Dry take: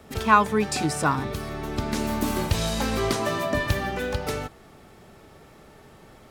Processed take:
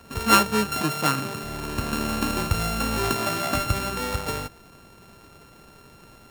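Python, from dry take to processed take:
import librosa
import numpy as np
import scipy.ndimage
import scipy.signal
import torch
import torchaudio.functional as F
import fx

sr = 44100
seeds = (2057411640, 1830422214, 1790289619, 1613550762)

y = np.r_[np.sort(x[:len(x) // 32 * 32].reshape(-1, 32), axis=1).ravel(), x[len(x) // 32 * 32:]]
y = fx.highpass(y, sr, hz=120.0, slope=24, at=(0.8, 1.44))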